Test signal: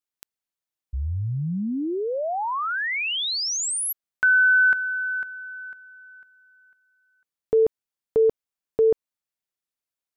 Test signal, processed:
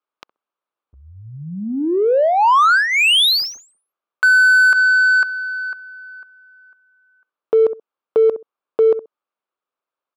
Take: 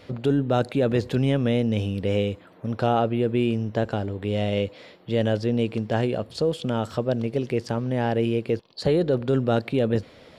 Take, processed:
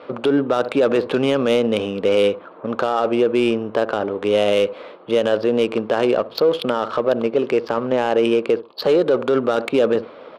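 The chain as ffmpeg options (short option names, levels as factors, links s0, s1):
-filter_complex "[0:a]highpass=460,equalizer=f=730:t=q:w=4:g=-4,equalizer=f=1200:t=q:w=4:g=6,equalizer=f=1900:t=q:w=4:g=-8,lowpass=f=5200:w=0.5412,lowpass=f=5200:w=1.3066,asplit=2[s0][s1];[s1]adelay=65,lowpass=f=970:p=1,volume=0.133,asplit=2[s2][s3];[s3]adelay=65,lowpass=f=970:p=1,volume=0.19[s4];[s2][s4]amix=inputs=2:normalize=0[s5];[s0][s5]amix=inputs=2:normalize=0,adynamicsmooth=sensitivity=3.5:basefreq=1600,alimiter=level_in=13.3:limit=0.891:release=50:level=0:latency=1,volume=0.422"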